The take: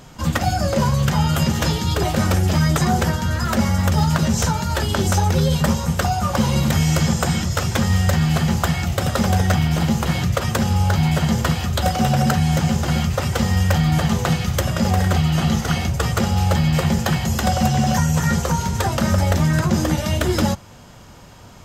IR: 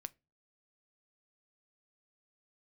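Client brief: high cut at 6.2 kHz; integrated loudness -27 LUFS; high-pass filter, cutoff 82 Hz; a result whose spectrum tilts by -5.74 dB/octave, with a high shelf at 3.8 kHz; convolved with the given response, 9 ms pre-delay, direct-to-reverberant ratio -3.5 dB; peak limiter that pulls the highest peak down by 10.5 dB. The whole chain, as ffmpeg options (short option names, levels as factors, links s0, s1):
-filter_complex "[0:a]highpass=82,lowpass=6200,highshelf=f=3800:g=-4.5,alimiter=limit=0.178:level=0:latency=1,asplit=2[s0][s1];[1:a]atrim=start_sample=2205,adelay=9[s2];[s1][s2]afir=irnorm=-1:irlink=0,volume=2.51[s3];[s0][s3]amix=inputs=2:normalize=0,volume=0.398"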